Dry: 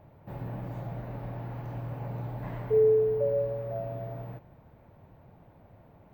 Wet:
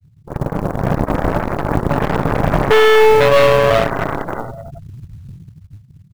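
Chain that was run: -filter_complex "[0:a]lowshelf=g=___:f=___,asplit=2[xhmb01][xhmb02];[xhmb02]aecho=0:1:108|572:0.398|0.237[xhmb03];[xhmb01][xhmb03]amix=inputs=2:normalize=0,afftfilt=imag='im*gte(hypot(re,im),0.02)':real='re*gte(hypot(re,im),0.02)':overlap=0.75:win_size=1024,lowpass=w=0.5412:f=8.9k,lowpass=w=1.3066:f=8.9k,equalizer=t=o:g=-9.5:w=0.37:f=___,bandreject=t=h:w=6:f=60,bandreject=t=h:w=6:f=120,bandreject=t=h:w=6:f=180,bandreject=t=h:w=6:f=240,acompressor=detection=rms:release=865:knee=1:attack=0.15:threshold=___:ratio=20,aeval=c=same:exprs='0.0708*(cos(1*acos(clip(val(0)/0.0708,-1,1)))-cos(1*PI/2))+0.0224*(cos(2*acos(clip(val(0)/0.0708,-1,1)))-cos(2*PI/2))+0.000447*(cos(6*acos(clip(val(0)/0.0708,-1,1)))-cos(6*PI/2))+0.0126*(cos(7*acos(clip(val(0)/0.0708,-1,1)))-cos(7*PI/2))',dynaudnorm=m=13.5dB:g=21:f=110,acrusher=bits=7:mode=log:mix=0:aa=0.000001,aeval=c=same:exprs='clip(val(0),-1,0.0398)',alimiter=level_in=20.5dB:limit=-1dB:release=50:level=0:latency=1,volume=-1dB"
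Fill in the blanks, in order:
4.5, 200, 2.7k, -24dB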